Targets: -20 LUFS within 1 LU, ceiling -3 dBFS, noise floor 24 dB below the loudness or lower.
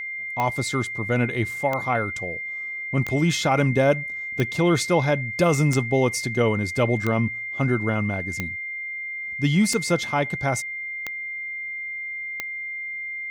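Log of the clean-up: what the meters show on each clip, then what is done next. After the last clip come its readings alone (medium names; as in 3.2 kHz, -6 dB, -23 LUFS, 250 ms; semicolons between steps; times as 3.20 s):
clicks found 10; steady tone 2.1 kHz; tone level -29 dBFS; loudness -24.0 LUFS; peak level -8.0 dBFS; loudness target -20.0 LUFS
-> de-click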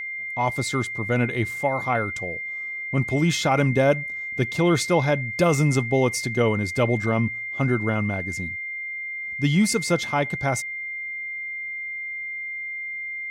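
clicks found 0; steady tone 2.1 kHz; tone level -29 dBFS
-> band-stop 2.1 kHz, Q 30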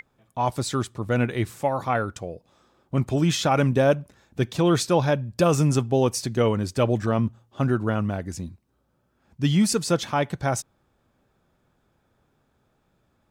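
steady tone not found; loudness -24.0 LUFS; peak level -8.0 dBFS; loudness target -20.0 LUFS
-> trim +4 dB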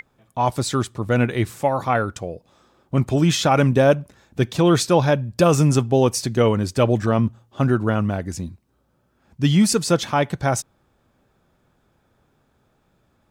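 loudness -20.0 LUFS; peak level -4.0 dBFS; noise floor -65 dBFS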